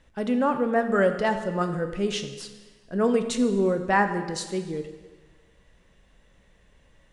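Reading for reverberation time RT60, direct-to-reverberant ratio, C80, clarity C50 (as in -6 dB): 1.4 s, 7.0 dB, 11.0 dB, 9.0 dB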